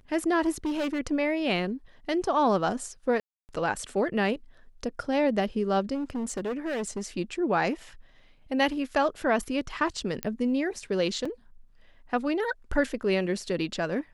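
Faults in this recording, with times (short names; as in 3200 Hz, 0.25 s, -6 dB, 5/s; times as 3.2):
0.65–1 clipped -25.5 dBFS
3.2–3.49 gap 0.289 s
5.94–7.06 clipped -27.5 dBFS
10.23 pop -13 dBFS
11.25 gap 4.4 ms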